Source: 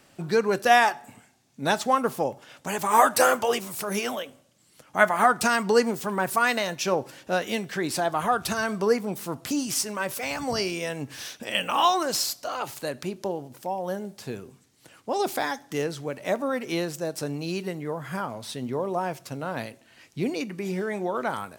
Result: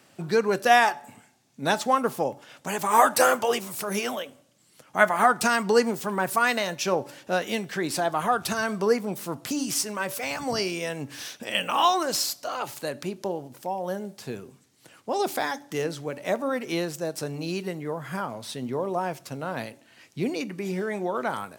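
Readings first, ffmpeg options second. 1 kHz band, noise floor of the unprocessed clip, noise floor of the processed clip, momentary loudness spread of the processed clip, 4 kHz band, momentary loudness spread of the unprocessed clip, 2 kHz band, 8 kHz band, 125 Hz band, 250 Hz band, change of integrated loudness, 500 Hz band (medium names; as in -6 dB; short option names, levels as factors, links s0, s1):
0.0 dB, -60 dBFS, -60 dBFS, 13 LU, 0.0 dB, 13 LU, 0.0 dB, 0.0 dB, -0.5 dB, -0.5 dB, 0.0 dB, 0.0 dB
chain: -af "highpass=94,bandreject=f=287.7:t=h:w=4,bandreject=f=575.4:t=h:w=4,bandreject=f=863.1:t=h:w=4"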